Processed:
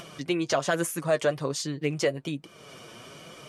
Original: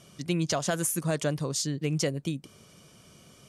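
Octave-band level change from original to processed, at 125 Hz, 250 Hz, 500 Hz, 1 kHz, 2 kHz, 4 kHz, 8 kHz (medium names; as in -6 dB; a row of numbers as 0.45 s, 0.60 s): -4.5 dB, 0.0 dB, +5.0 dB, +4.0 dB, +5.0 dB, +0.5 dB, -4.0 dB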